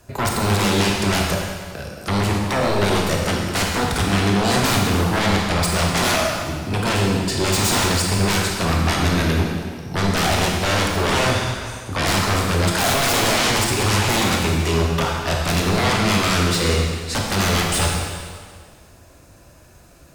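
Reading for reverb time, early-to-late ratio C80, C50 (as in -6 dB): 1.8 s, 2.5 dB, 1.0 dB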